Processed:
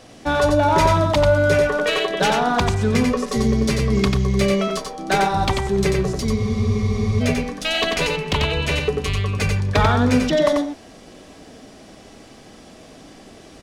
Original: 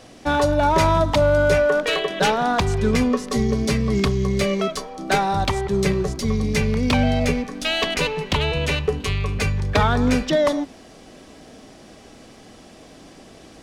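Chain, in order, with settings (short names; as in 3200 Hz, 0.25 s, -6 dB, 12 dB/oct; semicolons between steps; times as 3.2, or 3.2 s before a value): echo 91 ms -4 dB; spectral freeze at 6.38, 0.84 s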